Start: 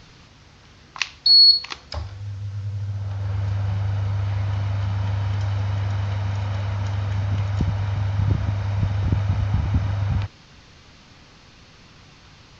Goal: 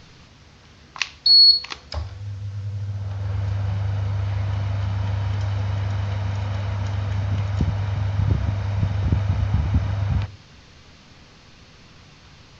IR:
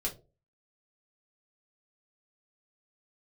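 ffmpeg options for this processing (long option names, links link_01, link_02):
-filter_complex "[0:a]asplit=2[link_01][link_02];[1:a]atrim=start_sample=2205,lowpass=frequency=1300:width=0.5412,lowpass=frequency=1300:width=1.3066[link_03];[link_02][link_03]afir=irnorm=-1:irlink=0,volume=-17dB[link_04];[link_01][link_04]amix=inputs=2:normalize=0"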